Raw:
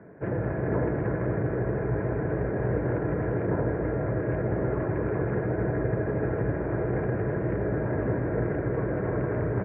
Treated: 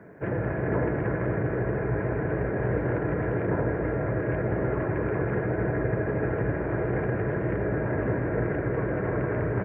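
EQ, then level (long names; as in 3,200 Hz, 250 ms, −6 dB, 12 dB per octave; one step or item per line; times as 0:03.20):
high-shelf EQ 2,200 Hz +11 dB
0.0 dB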